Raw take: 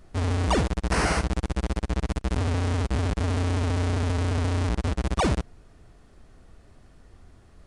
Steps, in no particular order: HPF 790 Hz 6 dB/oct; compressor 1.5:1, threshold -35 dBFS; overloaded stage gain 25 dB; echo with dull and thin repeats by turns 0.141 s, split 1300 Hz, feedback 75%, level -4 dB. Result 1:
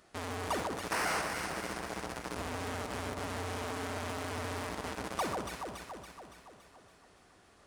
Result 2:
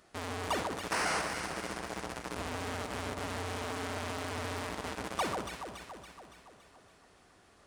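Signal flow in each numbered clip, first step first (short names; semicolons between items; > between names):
HPF > overloaded stage > echo with dull and thin repeats by turns > compressor; HPF > compressor > overloaded stage > echo with dull and thin repeats by turns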